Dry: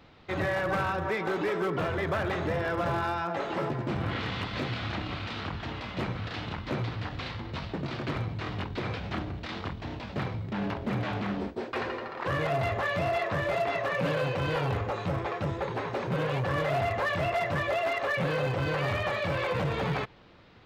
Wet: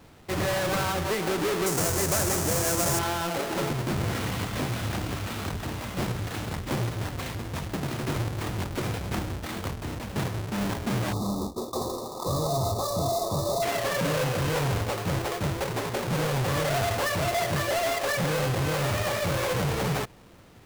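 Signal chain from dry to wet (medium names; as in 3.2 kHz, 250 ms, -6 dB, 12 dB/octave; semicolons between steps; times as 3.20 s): square wave that keeps the level; 1.66–2.99 s: resonant high shelf 4.9 kHz +10.5 dB, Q 1.5; 11.13–13.62 s: time-frequency box 1.3–3.5 kHz -27 dB; trim -1.5 dB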